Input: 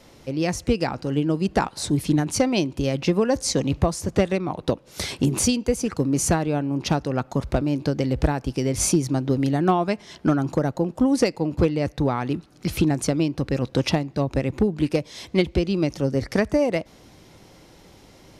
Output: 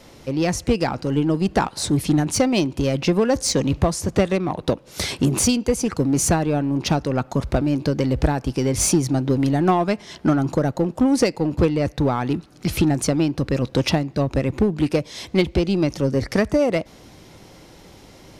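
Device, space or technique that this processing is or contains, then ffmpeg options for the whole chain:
parallel distortion: -filter_complex "[0:a]asplit=2[link_01][link_02];[link_02]asoftclip=type=hard:threshold=-23.5dB,volume=-4.5dB[link_03];[link_01][link_03]amix=inputs=2:normalize=0"

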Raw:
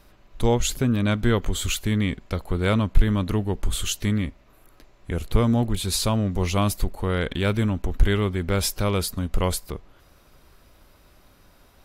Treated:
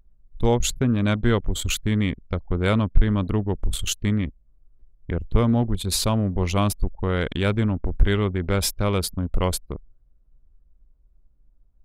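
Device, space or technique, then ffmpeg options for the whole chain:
parallel compression: -filter_complex "[0:a]anlmdn=100,asplit=2[link_01][link_02];[link_02]acompressor=threshold=-35dB:ratio=6,volume=-5dB[link_03];[link_01][link_03]amix=inputs=2:normalize=0"

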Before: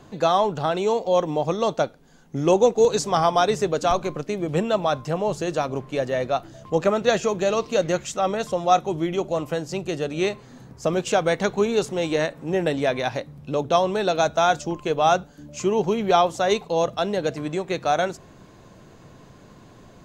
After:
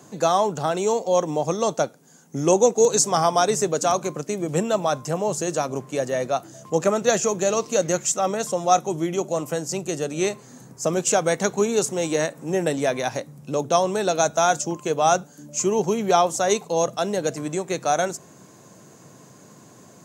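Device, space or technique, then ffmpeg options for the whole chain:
budget condenser microphone: -af "highpass=frequency=120:width=0.5412,highpass=frequency=120:width=1.3066,highshelf=frequency=5100:width_type=q:width=1.5:gain=10"

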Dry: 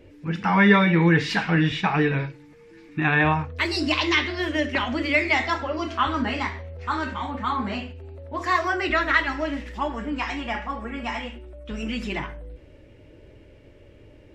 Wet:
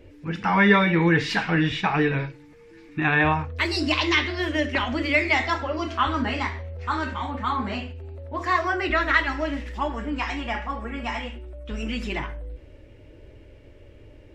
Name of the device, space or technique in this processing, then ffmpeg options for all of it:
low shelf boost with a cut just above: -filter_complex "[0:a]asettb=1/sr,asplit=3[link_01][link_02][link_03];[link_01]atrim=end=8.294[link_04];[link_02]atrim=start=8.29:end=9,asetpts=PTS-STARTPTS,afade=type=in:duration=0.004:curve=qsin,afade=type=out:start_time=0.706:duration=0.004:curve=qsin,highshelf=frequency=5200:gain=-6.5[link_05];[link_03]atrim=start=8.996[link_06];[link_04][link_05]acrossfade=duration=0.004:curve1=hsin:curve2=qsin[link_07];[link_07][link_06]acrossfade=duration=0.004:curve1=qsin:curve2=hsin,lowshelf=frequency=93:gain=5.5,equalizer=frequency=170:width_type=o:width=0.74:gain=-4.5"

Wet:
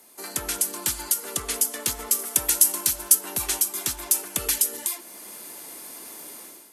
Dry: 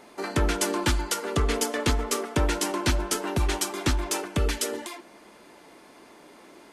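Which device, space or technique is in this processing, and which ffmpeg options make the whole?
FM broadcast chain: -filter_complex "[0:a]highpass=72,dynaudnorm=framelen=150:gausssize=5:maxgain=13dB,acrossover=split=220|450[link_01][link_02][link_03];[link_01]acompressor=threshold=-27dB:ratio=4[link_04];[link_02]acompressor=threshold=-35dB:ratio=4[link_05];[link_03]acompressor=threshold=-21dB:ratio=4[link_06];[link_04][link_05][link_06]amix=inputs=3:normalize=0,aemphasis=mode=production:type=50fm,alimiter=limit=-6dB:level=0:latency=1:release=457,asoftclip=type=hard:threshold=-8.5dB,lowpass=frequency=15000:width=0.5412,lowpass=frequency=15000:width=1.3066,aemphasis=mode=production:type=50fm,asettb=1/sr,asplit=3[link_07][link_08][link_09];[link_07]atrim=end=2.194[link_10];[link_08]atrim=start=2.19:end=3.15,asetpts=PTS-STARTPTS,afade=type=in:duration=0.004:curve=qsin,afade=type=out:start_time=0.956:duration=0.004:curve=qsin,highshelf=frequency=5700:gain=8[link_11];[link_09]atrim=start=3.146[link_12];[link_10][link_11]acrossfade=duration=0.004:curve1=hsin:curve2=qsin[link_13];[link_13][link_12]acrossfade=duration=0.004:curve1=qsin:curve2=hsin,volume=-10.5dB"

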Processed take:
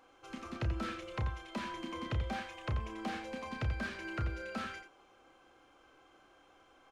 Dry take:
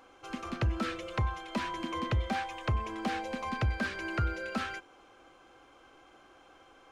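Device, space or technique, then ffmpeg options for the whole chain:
slapback doubling: -filter_complex "[0:a]asplit=3[link_01][link_02][link_03];[link_02]adelay=31,volume=-7dB[link_04];[link_03]adelay=86,volume=-9dB[link_05];[link_01][link_04][link_05]amix=inputs=3:normalize=0,volume=-6.5dB"

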